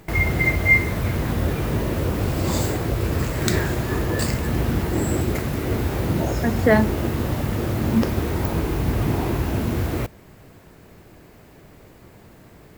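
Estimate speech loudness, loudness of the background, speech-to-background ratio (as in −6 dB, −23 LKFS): −23.0 LKFS, −23.0 LKFS, 0.0 dB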